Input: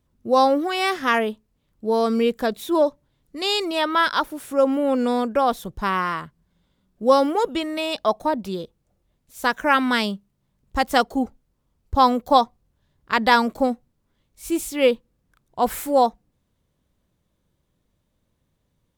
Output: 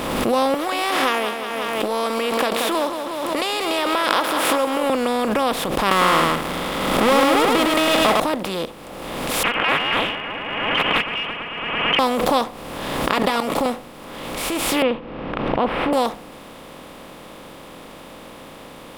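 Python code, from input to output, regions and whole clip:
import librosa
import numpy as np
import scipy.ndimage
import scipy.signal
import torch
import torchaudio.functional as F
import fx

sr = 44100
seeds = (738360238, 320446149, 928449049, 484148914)

y = fx.chain(x, sr, fx.highpass(hz=480.0, slope=12),
    fx.echo_feedback(ms=181, feedback_pct=38, wet_db=-17),
    fx.pre_swell(db_per_s=40.0), at=(0.54, 4.9))
y = fx.chain(y, sr, fx.power_curve(exponent=0.5),
    fx.small_body(hz=(1300.0, 2000.0, 3300.0), ring_ms=25, db=10),
    fx.echo_single(ms=105, db=-4.0), at=(5.91, 8.2))
y = fx.chain(y, sr, fx.freq_invert(carrier_hz=3100),
    fx.echo_heads(ms=111, heads='first and third', feedback_pct=64, wet_db=-23.5),
    fx.doppler_dist(depth_ms=0.51), at=(9.43, 11.99))
y = fx.chain(y, sr, fx.notch(hz=1600.0, q=6.5),
    fx.comb(ms=7.1, depth=0.57),
    fx.level_steps(step_db=10), at=(13.13, 13.66))
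y = fx.chain(y, sr, fx.ellip_lowpass(hz=2800.0, order=4, stop_db=60),
    fx.tilt_shelf(db=8.0, hz=670.0), at=(14.82, 15.93))
y = fx.bin_compress(y, sr, power=0.4)
y = fx.pre_swell(y, sr, db_per_s=31.0)
y = F.gain(torch.from_numpy(y), -8.5).numpy()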